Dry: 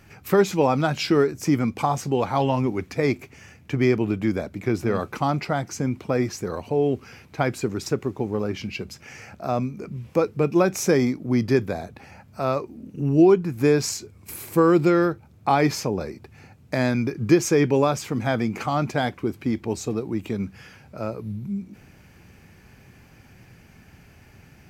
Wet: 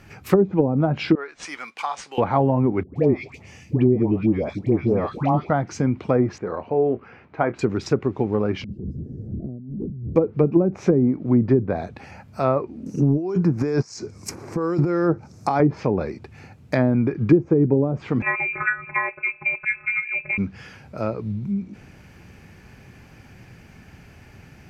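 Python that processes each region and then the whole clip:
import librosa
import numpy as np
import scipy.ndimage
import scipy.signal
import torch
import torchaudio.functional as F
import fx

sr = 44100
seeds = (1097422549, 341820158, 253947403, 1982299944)

y = fx.chain(x, sr, fx.highpass(hz=1300.0, slope=12),
    fx.resample_linear(factor=3), at=(1.15, 2.18))
y = fx.chain(y, sr, fx.peak_eq(hz=1500.0, db=-12.0, octaves=0.45),
    fx.dispersion(late='highs', ms=129.0, hz=990.0), at=(2.83, 5.5))
y = fx.chain(y, sr, fx.lowpass(hz=1600.0, slope=12),
    fx.low_shelf(hz=220.0, db=-11.0),
    fx.doubler(ms=26.0, db=-12), at=(6.38, 7.59))
y = fx.chain(y, sr, fx.zero_step(step_db=-31.0),
    fx.cheby2_lowpass(hz=890.0, order=4, stop_db=50),
    fx.over_compress(threshold_db=-35.0, ratio=-1.0), at=(8.64, 10.16))
y = fx.chain(y, sr, fx.highpass(hz=110.0, slope=12),
    fx.high_shelf_res(hz=4300.0, db=9.5, q=3.0),
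    fx.over_compress(threshold_db=-24.0, ratio=-1.0), at=(12.86, 15.6))
y = fx.chain(y, sr, fx.robotise(hz=223.0),
    fx.freq_invert(carrier_hz=2600),
    fx.bell_lfo(hz=1.0, low_hz=510.0, high_hz=1500.0, db=8), at=(18.22, 20.38))
y = fx.env_lowpass_down(y, sr, base_hz=350.0, full_db=-15.0)
y = fx.high_shelf(y, sr, hz=7300.0, db=-6.5)
y = F.gain(torch.from_numpy(y), 4.0).numpy()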